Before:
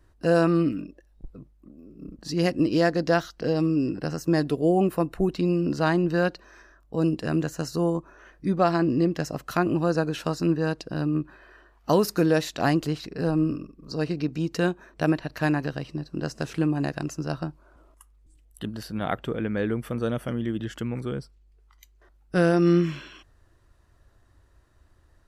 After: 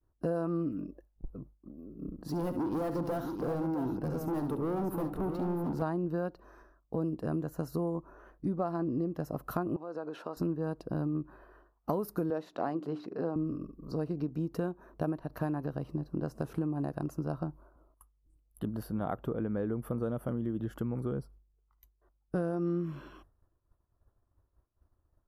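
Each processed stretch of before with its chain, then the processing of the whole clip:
2.08–5.82 overloaded stage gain 27.5 dB + tapped delay 68/315/662 ms -10.5/-19/-8 dB
9.76–10.37 compressor 12:1, threshold -28 dBFS + BPF 390–5100 Hz
12.3–13.36 BPF 250–4800 Hz + notches 60/120/180/240/300/360/420 Hz
whole clip: expander -48 dBFS; band shelf 3800 Hz -16 dB 2.6 oct; compressor 5:1, threshold -30 dBFS

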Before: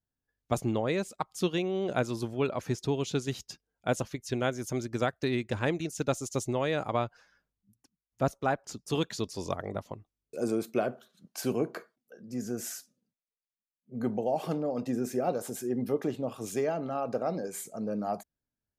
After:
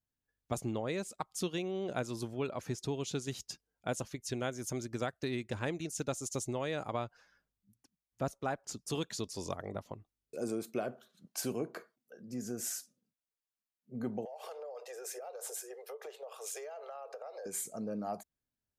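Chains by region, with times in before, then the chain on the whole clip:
14.25–17.46 steep high-pass 430 Hz 72 dB/oct + compressor 12:1, threshold -38 dBFS
whole clip: compressor 1.5:1, threshold -37 dBFS; dynamic EQ 8700 Hz, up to +6 dB, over -56 dBFS, Q 0.74; gain -2.5 dB

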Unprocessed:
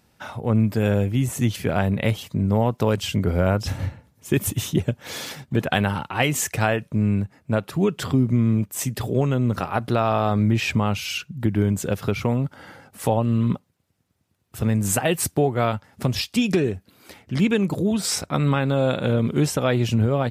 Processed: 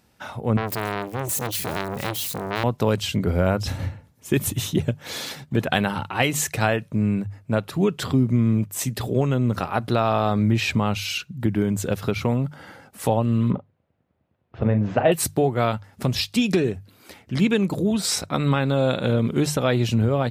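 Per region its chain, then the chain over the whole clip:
0.57–2.64 switching spikes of -23 dBFS + HPF 52 Hz + core saturation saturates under 1900 Hz
13.5–15.12 Gaussian blur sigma 2.9 samples + bell 590 Hz +6.5 dB 0.94 oct + doubler 38 ms -10 dB
whole clip: notches 50/100/150 Hz; dynamic EQ 4000 Hz, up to +6 dB, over -51 dBFS, Q 6

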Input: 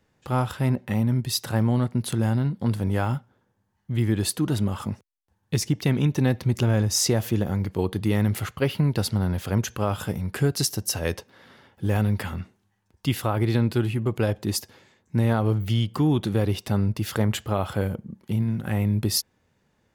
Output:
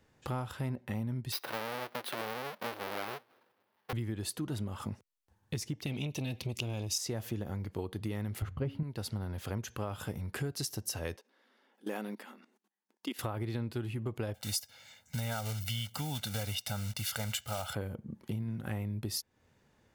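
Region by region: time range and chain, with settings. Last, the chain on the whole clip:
1.32–3.93 half-waves squared off + HPF 480 Hz + bell 7400 Hz -15 dB 0.79 oct
5.86–6.98 resonant high shelf 2100 Hz +6.5 dB, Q 3 + core saturation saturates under 670 Hz
8.42–8.83 tilt -3.5 dB/oct + de-hum 92.64 Hz, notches 3
11.16–13.19 level quantiser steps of 23 dB + brick-wall FIR high-pass 200 Hz
14.34–17.75 block floating point 5-bit + tilt shelf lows -7.5 dB, about 1300 Hz + comb 1.4 ms, depth 93%
whole clip: compressor 4:1, threshold -35 dBFS; bell 180 Hz -5.5 dB 0.21 oct

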